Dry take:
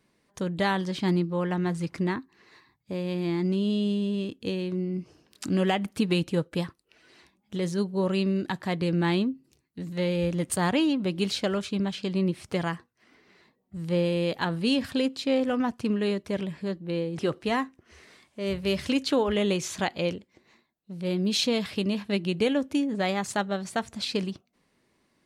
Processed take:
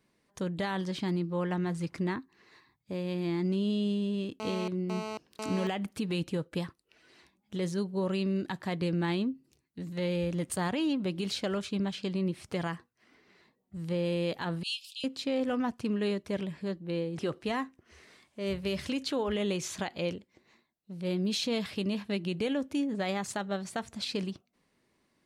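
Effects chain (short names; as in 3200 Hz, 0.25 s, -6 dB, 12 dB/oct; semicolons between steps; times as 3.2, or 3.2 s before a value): 14.63–15.04 steep high-pass 2600 Hz 96 dB/oct; limiter -19.5 dBFS, peak gain reduction 6 dB; 4.4–5.67 GSM buzz -34 dBFS; gain -3.5 dB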